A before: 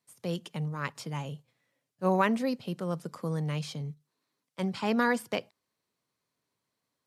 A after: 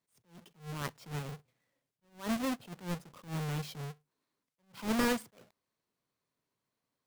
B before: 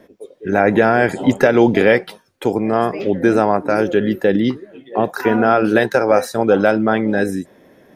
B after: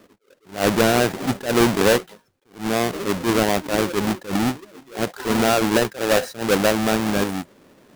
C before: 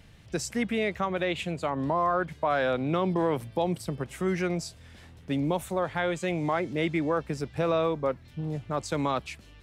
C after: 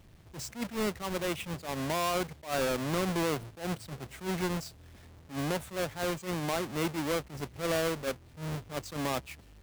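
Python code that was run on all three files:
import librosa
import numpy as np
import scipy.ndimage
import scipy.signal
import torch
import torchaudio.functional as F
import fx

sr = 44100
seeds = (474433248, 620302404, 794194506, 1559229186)

y = fx.halfwave_hold(x, sr)
y = fx.attack_slew(y, sr, db_per_s=190.0)
y = y * 10.0 ** (-8.0 / 20.0)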